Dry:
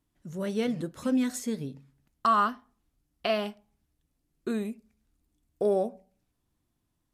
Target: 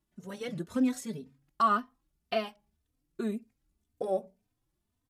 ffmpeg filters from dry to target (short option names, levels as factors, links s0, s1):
-filter_complex "[0:a]atempo=1.4,asplit=2[s0][s1];[s1]adelay=3.1,afreqshift=1.9[s2];[s0][s2]amix=inputs=2:normalize=1"